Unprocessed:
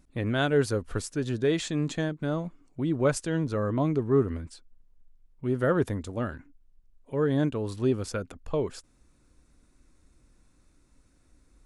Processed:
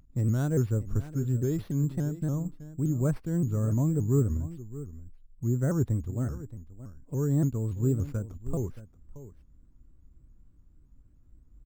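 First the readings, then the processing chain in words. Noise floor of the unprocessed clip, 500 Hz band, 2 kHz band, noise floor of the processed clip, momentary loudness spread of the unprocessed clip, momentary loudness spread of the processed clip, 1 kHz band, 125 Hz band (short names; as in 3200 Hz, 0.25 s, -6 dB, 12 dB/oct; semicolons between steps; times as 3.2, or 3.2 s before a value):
-64 dBFS, -7.5 dB, under -10 dB, -58 dBFS, 11 LU, 14 LU, -11.5 dB, +5.0 dB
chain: EQ curve 120 Hz 0 dB, 600 Hz -17 dB, 1200 Hz -17 dB, 2400 Hz -26 dB; on a send: echo 0.626 s -15 dB; on the sum: careless resampling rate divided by 6×, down none, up hold; shaped vibrato saw up 3.5 Hz, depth 160 cents; gain +6 dB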